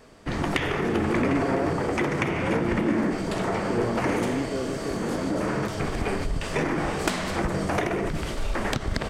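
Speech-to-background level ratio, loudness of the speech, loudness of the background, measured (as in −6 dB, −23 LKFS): −4.5 dB, −32.0 LKFS, −27.5 LKFS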